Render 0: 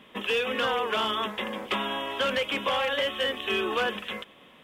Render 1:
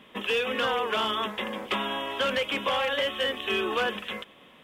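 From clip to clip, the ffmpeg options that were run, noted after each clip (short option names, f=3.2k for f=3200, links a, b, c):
-af anull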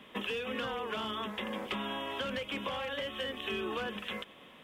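-filter_complex "[0:a]acrossover=split=250[a][b];[b]acompressor=threshold=-34dB:ratio=6[c];[a][c]amix=inputs=2:normalize=0,volume=-1dB"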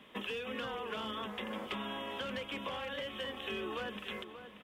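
-filter_complex "[0:a]asplit=2[a][b];[b]adelay=583.1,volume=-10dB,highshelf=f=4k:g=-13.1[c];[a][c]amix=inputs=2:normalize=0,volume=-3.5dB"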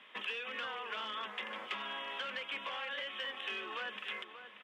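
-af "volume=33dB,asoftclip=hard,volume=-33dB,bandpass=f=2k:t=q:w=0.88:csg=0,volume=4dB"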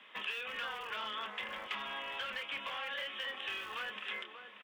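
-filter_complex "[0:a]acrossover=split=200|480|5400[a][b][c][d];[b]aeval=exprs='(mod(422*val(0)+1,2)-1)/422':c=same[e];[c]asplit=2[f][g];[g]adelay=28,volume=-7dB[h];[f][h]amix=inputs=2:normalize=0[i];[a][e][i][d]amix=inputs=4:normalize=0"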